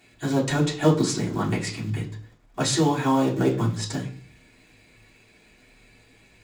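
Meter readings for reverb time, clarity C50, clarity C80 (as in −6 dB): 0.50 s, 11.0 dB, 15.0 dB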